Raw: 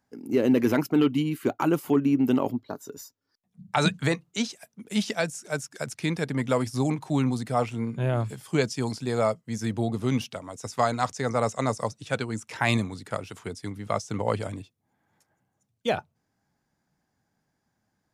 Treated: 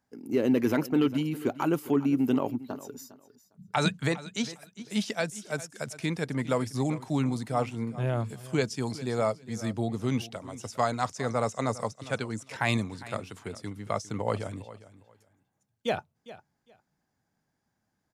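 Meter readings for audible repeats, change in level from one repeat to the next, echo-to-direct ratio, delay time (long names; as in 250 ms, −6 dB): 2, −14.5 dB, −17.0 dB, 405 ms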